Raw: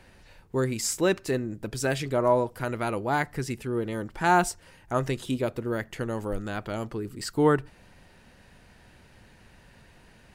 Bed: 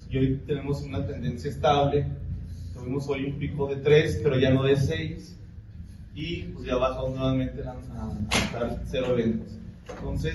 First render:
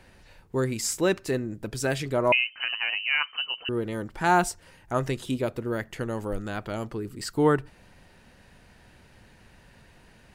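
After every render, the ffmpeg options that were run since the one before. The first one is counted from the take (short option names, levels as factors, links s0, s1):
-filter_complex "[0:a]asettb=1/sr,asplit=3[s0][s1][s2];[s0]atrim=end=2.324[s3];[s1]atrim=start=2.32:end=3.69,asetpts=PTS-STARTPTS,afade=t=in:d=0.004:c=qsin,afade=t=out:st=1.366:d=0.004:c=qsin,lowpass=f=2600:t=q:w=0.5098,lowpass=f=2600:t=q:w=0.6013,lowpass=f=2600:t=q:w=0.9,lowpass=f=2600:t=q:w=2.563,afreqshift=-3100[s4];[s2]atrim=start=3.686[s5];[s3][s4]acrossfade=d=0.004:c1=hsin:c2=qsin[s6];[s6][s5]acrossfade=d=0.004:c1=qsin:c2=hsin"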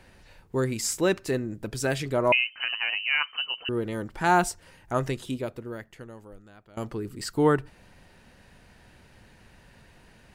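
-filter_complex "[0:a]asplit=2[s0][s1];[s0]atrim=end=6.77,asetpts=PTS-STARTPTS,afade=t=out:st=5.01:d=1.76:c=qua:silence=0.0944061[s2];[s1]atrim=start=6.77,asetpts=PTS-STARTPTS,afade=t=in:d=0.004:c=hsin:silence=0.0944061[s3];[s2][s3]concat=n=2:v=0:a=1"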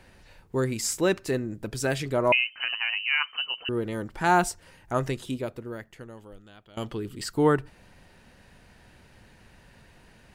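-filter_complex "[0:a]asettb=1/sr,asplit=3[s0][s1][s2];[s0]atrim=end=2.824[s3];[s1]atrim=start=2.82:end=3.24,asetpts=PTS-STARTPTS,afade=t=in:d=0.004:c=qsin,afade=t=out:st=0.416:d=0.004:c=qsin,highpass=f=770:w=0.5412,highpass=f=770:w=1.3066[s4];[s2]atrim=start=3.236[s5];[s3][s4]acrossfade=d=0.004:c1=hsin:c2=qsin[s6];[s6][s5]acrossfade=d=0.004:c1=qsin:c2=hsin,asettb=1/sr,asplit=3[s7][s8][s9];[s7]atrim=end=6.174[s10];[s8]atrim=start=6.17:end=7.23,asetpts=PTS-STARTPTS,afade=t=in:d=0.004:c=qsin,afade=t=out:st=1.056:d=0.004:c=qsin,equalizer=f=3200:w=3.2:g=12.5[s11];[s9]atrim=start=7.226[s12];[s10][s11]acrossfade=d=0.004:c1=hsin:c2=qsin[s13];[s13][s12]acrossfade=d=0.004:c1=qsin:c2=hsin"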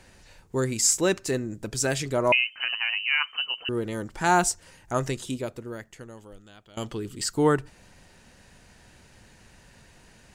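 -af "equalizer=f=7000:t=o:w=1:g=9.5"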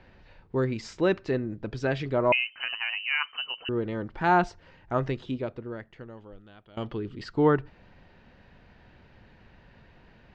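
-af "lowpass=f=4300:w=0.5412,lowpass=f=4300:w=1.3066,aemphasis=mode=reproduction:type=75kf"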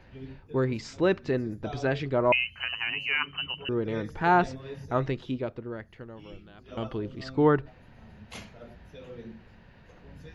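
-filter_complex "[1:a]volume=0.112[s0];[0:a][s0]amix=inputs=2:normalize=0"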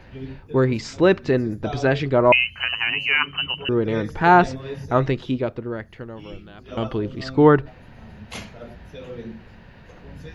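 -af "volume=2.51"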